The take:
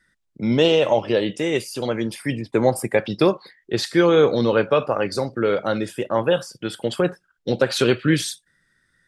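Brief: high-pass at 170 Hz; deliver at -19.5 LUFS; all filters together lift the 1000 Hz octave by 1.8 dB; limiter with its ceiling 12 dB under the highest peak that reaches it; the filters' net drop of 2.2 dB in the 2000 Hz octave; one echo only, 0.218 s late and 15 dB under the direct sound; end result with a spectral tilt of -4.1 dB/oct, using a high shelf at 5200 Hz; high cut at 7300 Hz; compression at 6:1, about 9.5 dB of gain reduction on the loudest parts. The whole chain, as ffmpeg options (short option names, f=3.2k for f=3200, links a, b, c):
-af "highpass=170,lowpass=7.3k,equalizer=f=1k:t=o:g=3.5,equalizer=f=2k:t=o:g=-3.5,highshelf=f=5.2k:g=-6,acompressor=threshold=-22dB:ratio=6,alimiter=limit=-21dB:level=0:latency=1,aecho=1:1:218:0.178,volume=12dB"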